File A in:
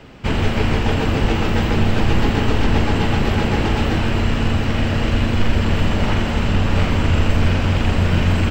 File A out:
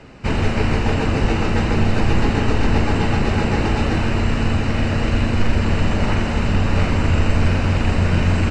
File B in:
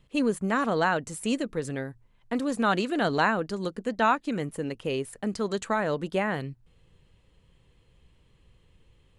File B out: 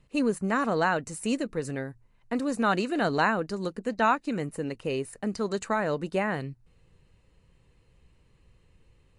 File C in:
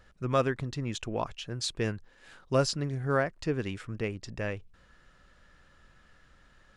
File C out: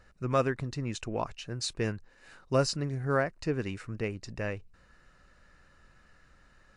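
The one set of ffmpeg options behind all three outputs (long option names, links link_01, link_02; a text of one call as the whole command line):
ffmpeg -i in.wav -af "bandreject=frequency=3300:width=5.4" -ar 24000 -c:a libmp3lame -b:a 64k out.mp3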